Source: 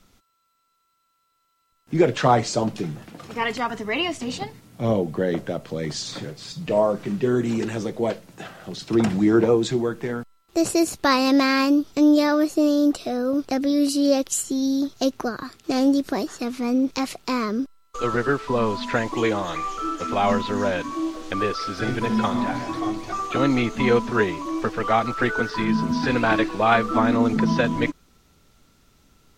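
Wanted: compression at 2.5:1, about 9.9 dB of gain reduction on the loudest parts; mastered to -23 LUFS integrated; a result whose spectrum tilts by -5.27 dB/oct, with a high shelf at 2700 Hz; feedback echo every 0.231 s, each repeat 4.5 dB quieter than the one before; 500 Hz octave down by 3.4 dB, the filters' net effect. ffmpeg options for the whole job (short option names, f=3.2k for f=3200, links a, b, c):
-af "equalizer=f=500:t=o:g=-4,highshelf=f=2.7k:g=-9,acompressor=threshold=-29dB:ratio=2.5,aecho=1:1:231|462|693|924|1155|1386|1617|1848|2079:0.596|0.357|0.214|0.129|0.0772|0.0463|0.0278|0.0167|0.01,volume=6.5dB"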